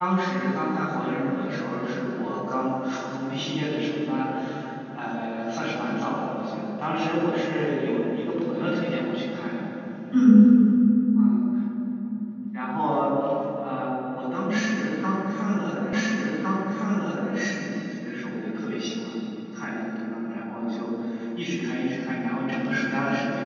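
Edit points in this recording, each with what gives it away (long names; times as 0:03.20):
0:15.93: the same again, the last 1.41 s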